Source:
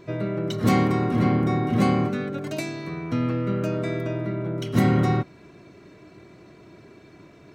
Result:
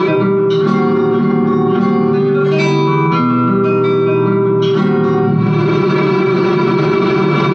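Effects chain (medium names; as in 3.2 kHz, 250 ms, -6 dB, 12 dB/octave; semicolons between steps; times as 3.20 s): cabinet simulation 170–4500 Hz, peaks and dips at 570 Hz -10 dB, 1.2 kHz +9 dB, 2 kHz -7 dB; comb 5.2 ms, depth 88%; reverberation RT60 0.60 s, pre-delay 6 ms, DRR -7 dB; level flattener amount 100%; trim -6.5 dB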